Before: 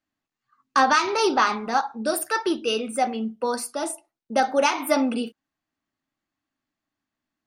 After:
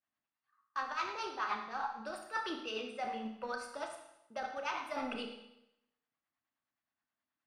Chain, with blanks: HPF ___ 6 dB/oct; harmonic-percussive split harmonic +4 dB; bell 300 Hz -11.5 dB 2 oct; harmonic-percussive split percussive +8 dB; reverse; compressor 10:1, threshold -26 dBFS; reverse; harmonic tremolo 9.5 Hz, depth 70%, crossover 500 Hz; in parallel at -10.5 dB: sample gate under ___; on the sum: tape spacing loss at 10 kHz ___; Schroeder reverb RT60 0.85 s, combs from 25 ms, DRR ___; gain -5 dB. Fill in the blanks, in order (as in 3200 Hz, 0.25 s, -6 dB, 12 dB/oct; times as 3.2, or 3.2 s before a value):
230 Hz, -32 dBFS, 24 dB, 4 dB